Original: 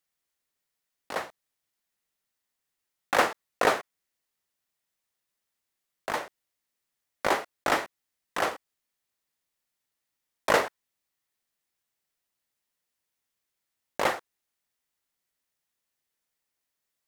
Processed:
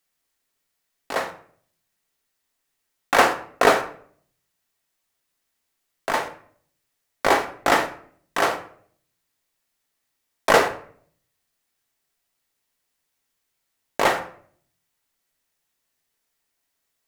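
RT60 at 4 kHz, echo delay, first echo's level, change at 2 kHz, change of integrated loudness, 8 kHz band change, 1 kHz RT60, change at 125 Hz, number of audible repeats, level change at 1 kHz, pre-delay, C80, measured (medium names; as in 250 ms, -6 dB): 0.35 s, no echo, no echo, +7.0 dB, +7.0 dB, +6.5 dB, 0.50 s, +7.0 dB, no echo, +7.5 dB, 3 ms, 15.0 dB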